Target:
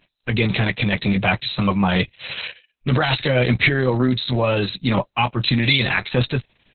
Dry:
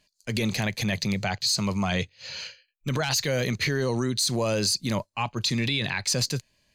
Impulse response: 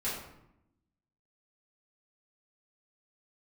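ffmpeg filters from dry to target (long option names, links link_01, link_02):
-filter_complex "[0:a]asplit=2[link_01][link_02];[link_02]adelay=16,volume=-9dB[link_03];[link_01][link_03]amix=inputs=2:normalize=0,volume=8.5dB" -ar 48000 -c:a libopus -b:a 6k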